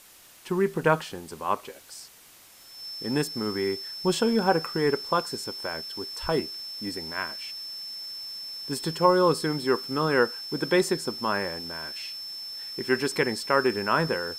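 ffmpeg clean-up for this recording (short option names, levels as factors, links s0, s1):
-af "adeclick=t=4,bandreject=f=5300:w=30,afwtdn=0.0028"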